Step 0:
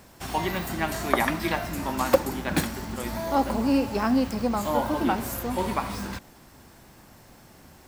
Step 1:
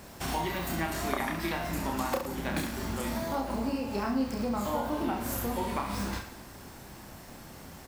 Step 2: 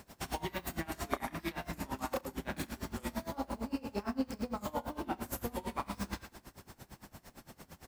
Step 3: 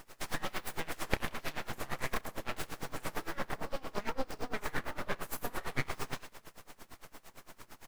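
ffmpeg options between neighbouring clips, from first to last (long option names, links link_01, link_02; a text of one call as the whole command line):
ffmpeg -i in.wav -filter_complex "[0:a]acompressor=threshold=-34dB:ratio=4,asplit=2[link_01][link_02];[link_02]aecho=0:1:30|67.5|114.4|173|246.2:0.631|0.398|0.251|0.158|0.1[link_03];[link_01][link_03]amix=inputs=2:normalize=0,volume=2dB" out.wav
ffmpeg -i in.wav -af "aeval=exprs='val(0)*pow(10,-23*(0.5-0.5*cos(2*PI*8.8*n/s))/20)':channel_layout=same,volume=-1.5dB" out.wav
ffmpeg -i in.wav -af "equalizer=frequency=1100:width_type=o:width=0.86:gain=6.5,aeval=exprs='abs(val(0))':channel_layout=same,volume=1.5dB" out.wav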